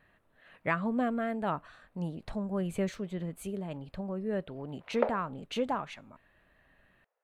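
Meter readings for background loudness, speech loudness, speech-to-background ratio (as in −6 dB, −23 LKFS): −34.5 LKFS, −35.0 LKFS, −0.5 dB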